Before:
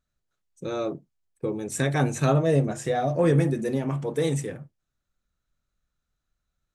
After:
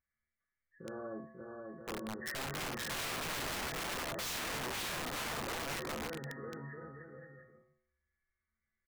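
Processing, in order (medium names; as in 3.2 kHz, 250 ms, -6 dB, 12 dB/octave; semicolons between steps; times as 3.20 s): knee-point frequency compression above 1.1 kHz 4:1; bouncing-ball echo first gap 410 ms, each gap 0.75×, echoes 5; tempo 0.76×; feedback comb 74 Hz, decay 0.8 s, harmonics odd, mix 90%; integer overflow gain 36 dB; trim +2 dB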